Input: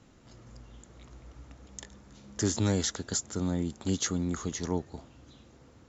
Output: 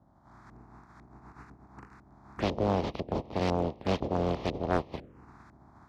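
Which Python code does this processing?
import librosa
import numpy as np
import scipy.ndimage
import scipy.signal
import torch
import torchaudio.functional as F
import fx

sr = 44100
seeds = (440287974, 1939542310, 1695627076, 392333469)

p1 = fx.spec_flatten(x, sr, power=0.14)
p2 = scipy.signal.sosfilt(scipy.signal.butter(2, 45.0, 'highpass', fs=sr, output='sos'), p1)
p3 = fx.peak_eq(p2, sr, hz=1700.0, db=-7.5, octaves=2.3)
p4 = fx.rider(p3, sr, range_db=10, speed_s=0.5)
p5 = p3 + (p4 * librosa.db_to_amplitude(3.0))
p6 = fx.env_phaser(p5, sr, low_hz=430.0, high_hz=1500.0, full_db=-26.5)
p7 = fx.filter_lfo_lowpass(p6, sr, shape='saw_up', hz=2.0, low_hz=520.0, high_hz=1700.0, q=1.2)
p8 = fx.doppler_dist(p7, sr, depth_ms=0.79)
y = p8 * librosa.db_to_amplitude(4.5)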